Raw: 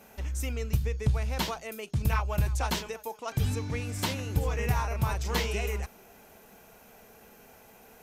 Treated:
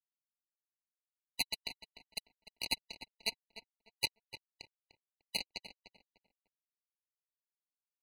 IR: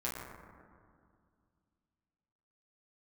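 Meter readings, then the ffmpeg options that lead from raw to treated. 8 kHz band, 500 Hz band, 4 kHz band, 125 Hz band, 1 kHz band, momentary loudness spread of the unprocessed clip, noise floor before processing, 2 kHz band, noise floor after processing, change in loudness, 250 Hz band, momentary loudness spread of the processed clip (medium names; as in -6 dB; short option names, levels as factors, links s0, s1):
-8.0 dB, -22.0 dB, -1.0 dB, -35.0 dB, -19.5 dB, 6 LU, -55 dBFS, -9.0 dB, under -85 dBFS, -8.5 dB, -21.5 dB, 18 LU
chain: -filter_complex "[0:a]acompressor=threshold=0.0282:ratio=5,bandpass=f=2100:t=q:w=0.54:csg=0,acrusher=bits=4:mix=0:aa=0.000001,lowpass=f=3800:t=q:w=5.5,aeval=exprs='0.0562*(abs(mod(val(0)/0.0562+3,4)-2)-1)':c=same,flanger=delay=1.3:depth=4:regen=-36:speed=0.47:shape=triangular,asplit=2[s0][s1];[s1]adelay=299,lowpass=f=2400:p=1,volume=0.282,asplit=2[s2][s3];[s3]adelay=299,lowpass=f=2400:p=1,volume=0.28,asplit=2[s4][s5];[s5]adelay=299,lowpass=f=2400:p=1,volume=0.28[s6];[s2][s4][s6]amix=inputs=3:normalize=0[s7];[s0][s7]amix=inputs=2:normalize=0,afftfilt=real='re*eq(mod(floor(b*sr/1024/980),2),0)':imag='im*eq(mod(floor(b*sr/1024/980),2),0)':win_size=1024:overlap=0.75,volume=4.22"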